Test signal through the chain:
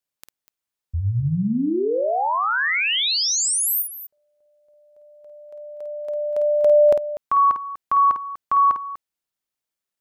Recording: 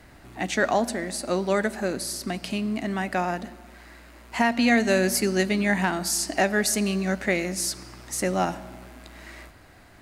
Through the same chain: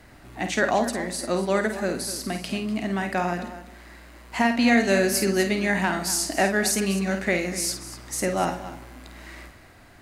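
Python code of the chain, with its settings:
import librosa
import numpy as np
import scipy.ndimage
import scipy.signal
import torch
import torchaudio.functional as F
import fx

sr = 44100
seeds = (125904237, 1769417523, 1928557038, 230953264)

y = fx.echo_multitap(x, sr, ms=(51, 245), db=(-7.5, -13.5))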